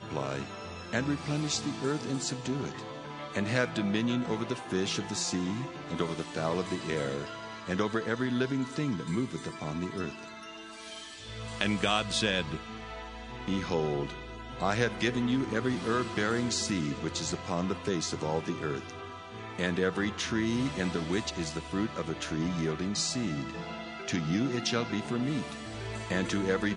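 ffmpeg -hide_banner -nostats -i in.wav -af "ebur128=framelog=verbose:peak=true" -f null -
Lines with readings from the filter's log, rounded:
Integrated loudness:
  I:         -32.0 LUFS
  Threshold: -42.2 LUFS
Loudness range:
  LRA:         2.9 LU
  Threshold: -52.2 LUFS
  LRA low:   -33.4 LUFS
  LRA high:  -30.5 LUFS
True peak:
  Peak:       -8.7 dBFS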